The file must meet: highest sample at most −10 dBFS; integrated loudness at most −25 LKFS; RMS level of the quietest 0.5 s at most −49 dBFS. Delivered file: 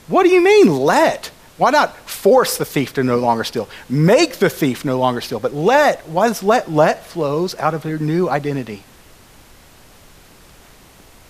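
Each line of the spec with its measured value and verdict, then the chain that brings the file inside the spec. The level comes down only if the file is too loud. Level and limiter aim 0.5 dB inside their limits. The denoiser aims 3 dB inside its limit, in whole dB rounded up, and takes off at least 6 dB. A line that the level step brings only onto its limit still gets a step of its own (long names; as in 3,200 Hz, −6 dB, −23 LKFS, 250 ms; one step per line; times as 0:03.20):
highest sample −3.0 dBFS: out of spec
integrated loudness −16.0 LKFS: out of spec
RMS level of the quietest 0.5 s −45 dBFS: out of spec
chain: level −9.5 dB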